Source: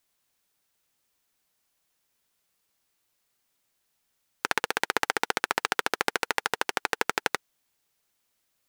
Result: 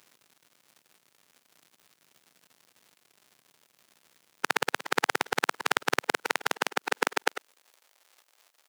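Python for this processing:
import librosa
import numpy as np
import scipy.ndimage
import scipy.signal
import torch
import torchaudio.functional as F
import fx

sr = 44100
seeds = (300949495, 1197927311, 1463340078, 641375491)

y = fx.local_reverse(x, sr, ms=31.0)
y = fx.dmg_crackle(y, sr, seeds[0], per_s=200.0, level_db=-45.0)
y = fx.filter_sweep_highpass(y, sr, from_hz=150.0, to_hz=550.0, start_s=6.36, end_s=7.82, q=1.0)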